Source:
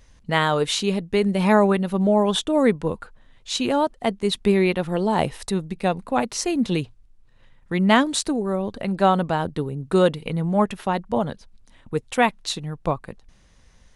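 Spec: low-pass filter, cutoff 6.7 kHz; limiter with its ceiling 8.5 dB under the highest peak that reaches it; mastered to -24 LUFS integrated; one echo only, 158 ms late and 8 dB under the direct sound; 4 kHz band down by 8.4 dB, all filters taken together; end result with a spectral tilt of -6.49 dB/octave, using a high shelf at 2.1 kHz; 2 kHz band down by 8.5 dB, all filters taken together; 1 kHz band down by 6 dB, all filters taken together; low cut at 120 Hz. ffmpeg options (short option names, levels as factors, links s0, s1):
-af "highpass=120,lowpass=6700,equalizer=f=1000:t=o:g=-6,equalizer=f=2000:t=o:g=-5.5,highshelf=f=2100:g=-4,equalizer=f=4000:t=o:g=-4,alimiter=limit=0.15:level=0:latency=1,aecho=1:1:158:0.398,volume=1.33"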